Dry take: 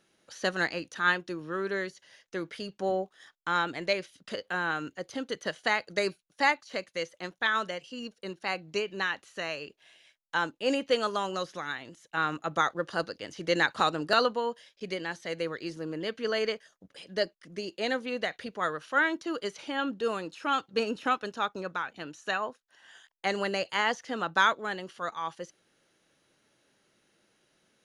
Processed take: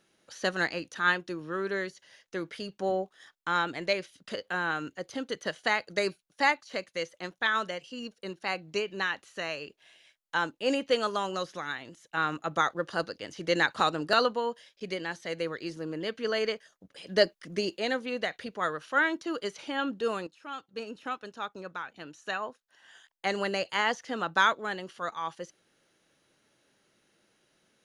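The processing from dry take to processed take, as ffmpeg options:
-filter_complex "[0:a]asettb=1/sr,asplit=3[s0][s1][s2];[s0]atrim=end=17.044[s3];[s1]atrim=start=17.04:end=17.78,asetpts=PTS-STARTPTS,afade=t=in:d=0.004:c=qsin,afade=t=out:st=0.736:d=0.004:c=qsin,acontrast=60[s4];[s2]atrim=start=17.776[s5];[s3][s4]acrossfade=d=0.004:c1=hsin:c2=qsin[s6];[s6][s5]acrossfade=d=0.004:c1=qsin:c2=hsin,asplit=2[s7][s8];[s7]atrim=end=20.27,asetpts=PTS-STARTPTS,afade=t=out:st=20.266:d=0.004:c=hsin:silence=0.199526[s9];[s8]atrim=start=20.27,asetpts=PTS-STARTPTS,afade=t=in:d=3.17:silence=0.199526[s10];[s9][s10]concat=n=2:v=0:a=1"

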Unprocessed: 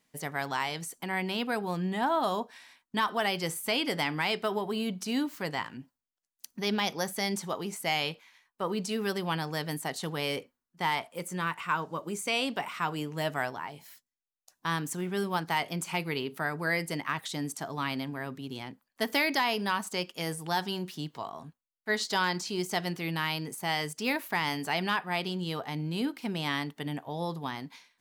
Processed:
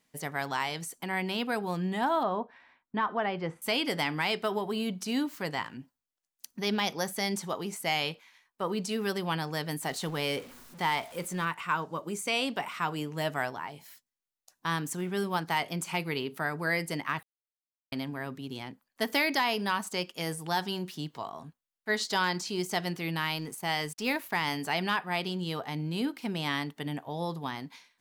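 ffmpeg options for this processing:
-filter_complex "[0:a]asettb=1/sr,asplit=3[s0][s1][s2];[s0]atrim=end=2.234[s3];[s1]atrim=start=2.23:end=3.62,asetpts=PTS-STARTPTS,afade=t=in:d=0.004:c=qsin,afade=t=out:st=1.386:d=0.004:c=qsin,lowpass=1700[s4];[s2]atrim=start=3.616[s5];[s3][s4]acrossfade=d=0.004:c1=hsin:c2=qsin[s6];[s6][s5]acrossfade=d=0.004:c1=qsin:c2=hsin,asettb=1/sr,asplit=3[s7][s8][s9];[s7]atrim=end=9.814[s10];[s8]atrim=start=9.81:end=11.45,asetpts=PTS-STARTPTS,afade=t=in:d=0.004:c=qsin,afade=t=out:st=1.636:d=0.004:c=qsin,aeval=exprs='val(0)+0.5*0.00631*sgn(val(0))':c=same[s11];[s9]atrim=start=11.446[s12];[s10][s11]acrossfade=d=0.004:c1=hsin:c2=qsin[s13];[s13][s12]acrossfade=d=0.004:c1=qsin:c2=hsin,asettb=1/sr,asplit=3[s14][s15][s16];[s14]atrim=end=23.194[s17];[s15]atrim=start=23.19:end=24.48,asetpts=PTS-STARTPTS,afade=t=in:d=0.004:c=qsin,afade=t=out:st=1.286:d=0.004:c=qsin,aeval=exprs='sgn(val(0))*max(abs(val(0))-0.0015,0)':c=same[s18];[s16]atrim=start=24.476[s19];[s17][s18]acrossfade=d=0.004:c1=hsin:c2=qsin[s20];[s20][s19]acrossfade=d=0.004:c1=qsin:c2=hsin,asplit=3[s21][s22][s23];[s21]atrim=end=17.23,asetpts=PTS-STARTPTS,afade=t=out:st=17.226:d=0.004:c=hsin[s24];[s22]atrim=start=17.23:end=17.92,asetpts=PTS-STARTPTS,volume=0[s25];[s23]atrim=start=17.92,asetpts=PTS-STARTPTS,afade=t=in:d=0.004:c=hsin[s26];[s24][s25][s26]concat=n=3:v=0:a=1"

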